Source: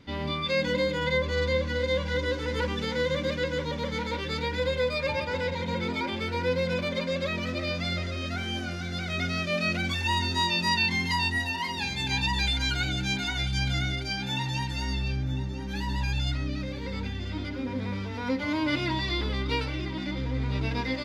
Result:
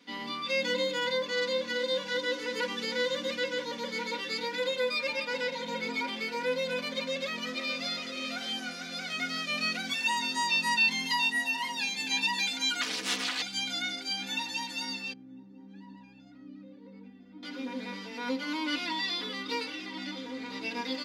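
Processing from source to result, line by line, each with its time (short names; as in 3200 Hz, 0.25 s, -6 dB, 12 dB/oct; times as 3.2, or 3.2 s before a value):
6.94–7.92 echo throw 0.6 s, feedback 50%, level -9.5 dB
12.81–13.42 Doppler distortion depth 0.97 ms
15.13–17.43 band-pass 100 Hz, Q 0.71
whole clip: HPF 210 Hz 24 dB/oct; high shelf 2100 Hz +9.5 dB; comb 4.1 ms, depth 71%; gain -8 dB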